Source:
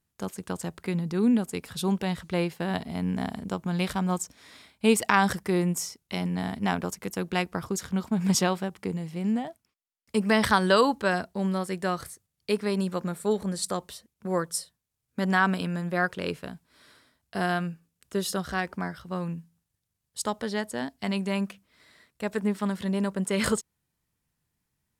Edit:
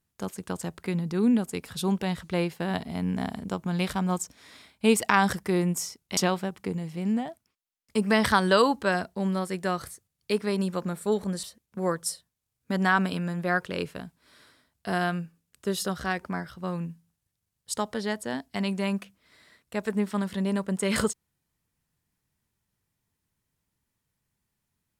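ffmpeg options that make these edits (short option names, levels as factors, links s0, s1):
-filter_complex "[0:a]asplit=3[s0][s1][s2];[s0]atrim=end=6.172[s3];[s1]atrim=start=8.358:end=13.622[s4];[s2]atrim=start=13.908[s5];[s3][s4]acrossfade=d=0.004:c1=hsin:c2=hsin[s6];[s6][s5]acrossfade=d=0.004:c1=hsin:c2=hsin"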